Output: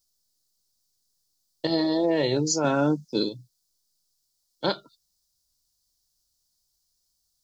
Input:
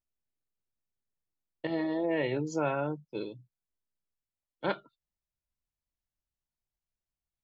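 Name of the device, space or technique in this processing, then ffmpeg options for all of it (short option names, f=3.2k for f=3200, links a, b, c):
over-bright horn tweeter: -filter_complex "[0:a]asettb=1/sr,asplit=3[a][b][c];[a]atrim=end=2.644[d];[b]atrim=start=2.64:end=3.29,asetpts=PTS-STARTPTS,afade=t=in:d=0.004:c=qsin,afade=t=out:st=0.646:d=0.004:c=qsin,equalizer=f=250:t=o:w=0.67:g=11,equalizer=f=1.6k:t=o:w=0.67:g=5,equalizer=f=6.3k:t=o:w=0.67:g=8[e];[c]atrim=start=3.286[f];[d][e]acrossfade=d=0.004:c1=hsin:c2=qsin[g];[g][f]acrossfade=d=0.004:c1=qsin:c2=hsin,highshelf=f=3.4k:t=q:w=3:g=12.5,alimiter=limit=-21dB:level=0:latency=1:release=243,volume=7.5dB"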